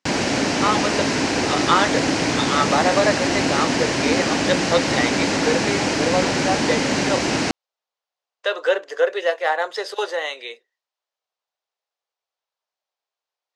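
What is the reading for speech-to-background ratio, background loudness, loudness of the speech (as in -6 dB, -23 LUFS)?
-3.0 dB, -20.5 LUFS, -23.5 LUFS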